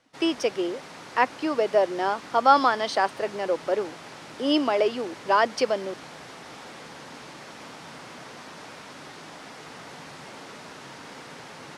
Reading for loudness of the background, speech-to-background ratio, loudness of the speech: −42.0 LKFS, 17.5 dB, −24.5 LKFS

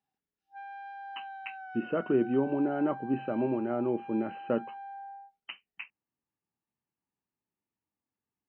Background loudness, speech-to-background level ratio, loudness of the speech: −44.5 LKFS, 13.5 dB, −31.0 LKFS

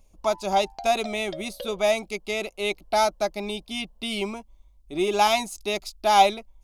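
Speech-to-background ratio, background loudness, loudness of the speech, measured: 16.0 dB, −41.0 LKFS, −25.0 LKFS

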